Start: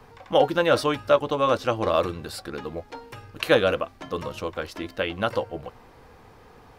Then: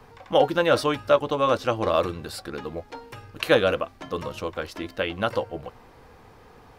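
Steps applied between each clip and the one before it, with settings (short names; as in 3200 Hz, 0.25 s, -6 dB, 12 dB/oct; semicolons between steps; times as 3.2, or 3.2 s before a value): nothing audible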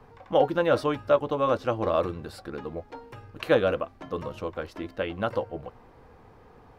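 high shelf 2200 Hz -10.5 dB; gain -1.5 dB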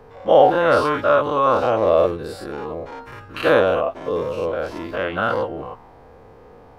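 spectral dilation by 0.12 s; LFO bell 0.47 Hz 480–1500 Hz +7 dB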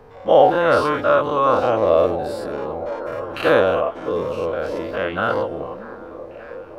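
delay with a stepping band-pass 0.589 s, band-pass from 260 Hz, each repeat 0.7 oct, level -8 dB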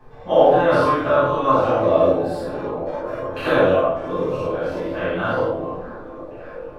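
shoebox room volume 730 m³, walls furnished, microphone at 8.7 m; gain -11.5 dB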